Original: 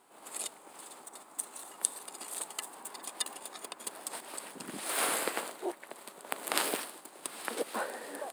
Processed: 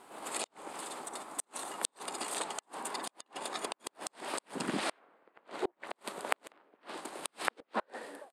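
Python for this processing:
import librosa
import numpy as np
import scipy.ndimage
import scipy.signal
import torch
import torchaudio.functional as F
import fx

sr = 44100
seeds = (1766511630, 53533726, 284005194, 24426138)

y = fx.fade_out_tail(x, sr, length_s=0.88)
y = fx.high_shelf(y, sr, hz=5700.0, db=-6.5)
y = fx.env_lowpass_down(y, sr, base_hz=1500.0, full_db=-30.5)
y = fx.gate_flip(y, sr, shuts_db=-29.0, range_db=-38)
y = F.gain(torch.from_numpy(y), 9.0).numpy()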